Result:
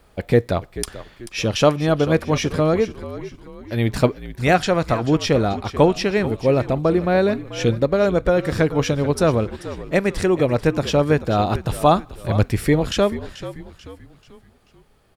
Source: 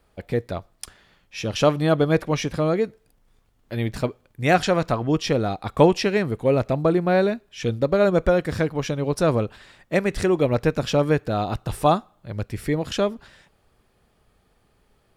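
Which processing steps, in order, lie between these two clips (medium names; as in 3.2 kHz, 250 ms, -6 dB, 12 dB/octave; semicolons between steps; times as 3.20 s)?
gain riding 0.5 s; on a send: frequency-shifting echo 437 ms, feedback 43%, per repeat -62 Hz, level -14 dB; on the sum: trim +3 dB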